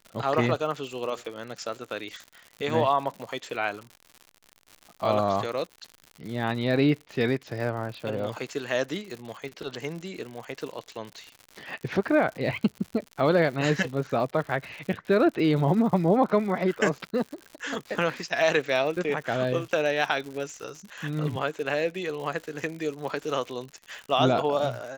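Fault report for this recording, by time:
crackle 120/s -35 dBFS

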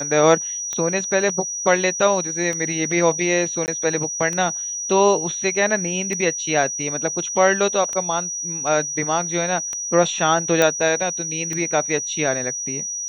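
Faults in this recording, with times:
tick 33 1/3 rpm -13 dBFS
tone 5800 Hz -25 dBFS
3.66–3.68 gap 19 ms
10.62 pop -3 dBFS

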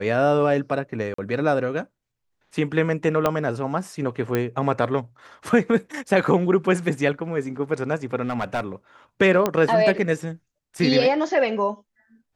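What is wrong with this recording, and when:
1.14–1.18 gap 44 ms
3.26 pop -7 dBFS
4.35 pop -10 dBFS
8.24–8.61 clipped -19 dBFS
9.46 pop -7 dBFS

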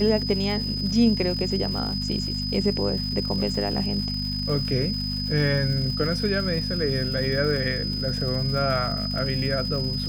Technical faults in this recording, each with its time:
crackle 270/s -33 dBFS
hum 50 Hz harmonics 5 -30 dBFS
tone 5000 Hz -29 dBFS

